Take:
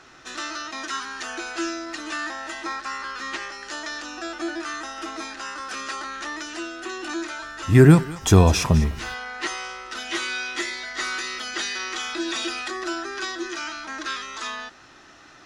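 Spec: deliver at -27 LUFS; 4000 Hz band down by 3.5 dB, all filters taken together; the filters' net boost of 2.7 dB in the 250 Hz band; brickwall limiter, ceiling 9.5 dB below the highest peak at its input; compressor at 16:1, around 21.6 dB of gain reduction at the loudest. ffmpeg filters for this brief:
-af "equalizer=f=250:t=o:g=4,equalizer=f=4k:t=o:g=-4.5,acompressor=threshold=-27dB:ratio=16,volume=8dB,alimiter=limit=-19dB:level=0:latency=1"

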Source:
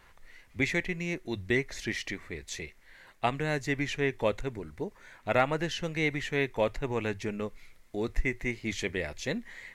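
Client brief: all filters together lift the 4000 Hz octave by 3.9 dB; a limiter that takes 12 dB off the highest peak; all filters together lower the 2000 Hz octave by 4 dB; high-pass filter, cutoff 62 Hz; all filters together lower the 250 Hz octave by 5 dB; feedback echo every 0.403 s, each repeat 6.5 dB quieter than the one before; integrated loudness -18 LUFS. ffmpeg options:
-af "highpass=62,equalizer=f=250:t=o:g=-7,equalizer=f=2k:t=o:g=-6.5,equalizer=f=4k:t=o:g=7.5,alimiter=level_in=0.5dB:limit=-24dB:level=0:latency=1,volume=-0.5dB,aecho=1:1:403|806|1209|1612|2015|2418:0.473|0.222|0.105|0.0491|0.0231|0.0109,volume=18dB"

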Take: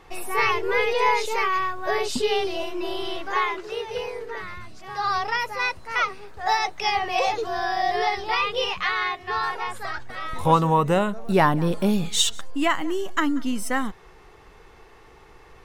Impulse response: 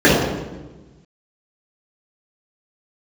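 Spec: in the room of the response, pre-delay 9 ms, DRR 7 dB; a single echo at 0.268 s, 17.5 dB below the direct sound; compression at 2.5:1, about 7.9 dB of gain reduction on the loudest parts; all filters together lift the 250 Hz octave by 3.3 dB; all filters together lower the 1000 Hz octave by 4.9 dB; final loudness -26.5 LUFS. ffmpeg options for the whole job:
-filter_complex "[0:a]equalizer=f=250:t=o:g=5,equalizer=f=1k:t=o:g=-6.5,acompressor=threshold=-26dB:ratio=2.5,aecho=1:1:268:0.133,asplit=2[a][b];[1:a]atrim=start_sample=2205,adelay=9[c];[b][c]afir=irnorm=-1:irlink=0,volume=-36.5dB[d];[a][d]amix=inputs=2:normalize=0,volume=1dB"

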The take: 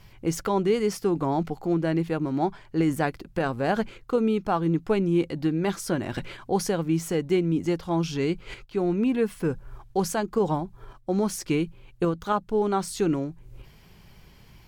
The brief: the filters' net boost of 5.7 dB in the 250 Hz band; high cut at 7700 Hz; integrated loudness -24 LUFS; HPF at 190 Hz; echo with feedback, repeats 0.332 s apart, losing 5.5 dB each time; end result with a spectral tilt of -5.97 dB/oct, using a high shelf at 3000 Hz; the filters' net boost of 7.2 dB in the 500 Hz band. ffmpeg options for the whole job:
-af "highpass=190,lowpass=7.7k,equalizer=f=250:t=o:g=7,equalizer=f=500:t=o:g=7,highshelf=f=3k:g=-6.5,aecho=1:1:332|664|996|1328|1660|1992|2324:0.531|0.281|0.149|0.079|0.0419|0.0222|0.0118,volume=-4.5dB"

